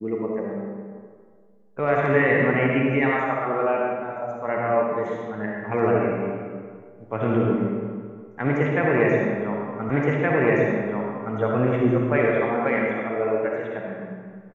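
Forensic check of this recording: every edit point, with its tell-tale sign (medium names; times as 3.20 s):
9.90 s: repeat of the last 1.47 s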